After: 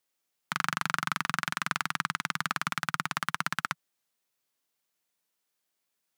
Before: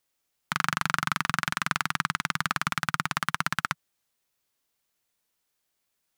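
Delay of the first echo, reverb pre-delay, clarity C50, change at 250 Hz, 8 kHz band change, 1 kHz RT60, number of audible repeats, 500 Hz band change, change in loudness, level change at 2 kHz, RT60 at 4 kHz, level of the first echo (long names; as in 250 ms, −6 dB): no echo audible, no reverb audible, no reverb audible, −4.0 dB, −3.0 dB, no reverb audible, no echo audible, −3.0 dB, −3.0 dB, −3.0 dB, no reverb audible, no echo audible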